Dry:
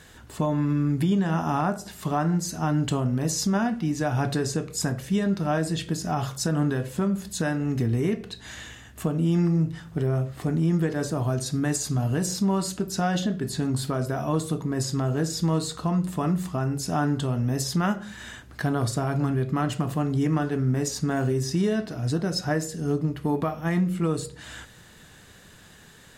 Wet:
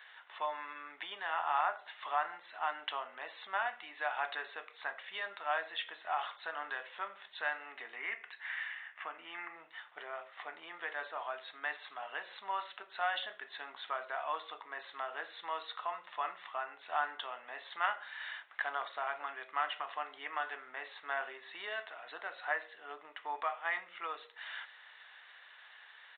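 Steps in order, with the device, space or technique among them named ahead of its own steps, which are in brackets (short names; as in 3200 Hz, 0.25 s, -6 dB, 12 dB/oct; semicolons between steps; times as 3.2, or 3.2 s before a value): 7.96–9.56 graphic EQ 125/250/500/2000/4000 Hz -6/+5/-6/+7/-10 dB; musical greeting card (downsampling 8000 Hz; HPF 800 Hz 24 dB/oct; bell 2000 Hz +5.5 dB 0.25 oct); gain -2.5 dB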